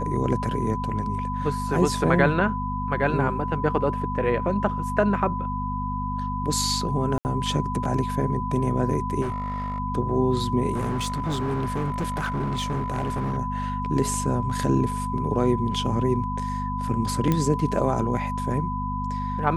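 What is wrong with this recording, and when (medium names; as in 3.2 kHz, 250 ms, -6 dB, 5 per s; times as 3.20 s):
hum 50 Hz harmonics 5 -30 dBFS
whine 1 kHz -29 dBFS
7.18–7.25 s: dropout 69 ms
9.21–9.80 s: clipped -24 dBFS
10.73–13.38 s: clipped -22.5 dBFS
17.32 s: pop -10 dBFS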